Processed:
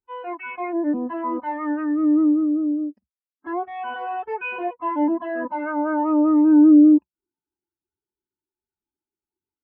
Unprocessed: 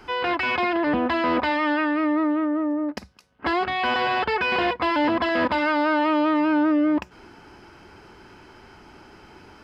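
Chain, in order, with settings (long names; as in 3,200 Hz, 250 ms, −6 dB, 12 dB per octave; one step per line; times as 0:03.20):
every bin expanded away from the loudest bin 2.5 to 1
level +6.5 dB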